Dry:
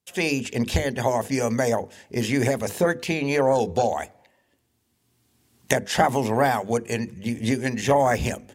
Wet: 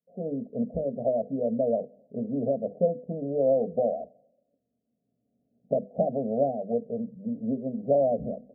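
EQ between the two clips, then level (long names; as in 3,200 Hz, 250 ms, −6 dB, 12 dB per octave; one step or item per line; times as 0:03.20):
high-pass filter 210 Hz 6 dB per octave
Butterworth low-pass 690 Hz 96 dB per octave
phaser with its sweep stopped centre 350 Hz, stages 6
0.0 dB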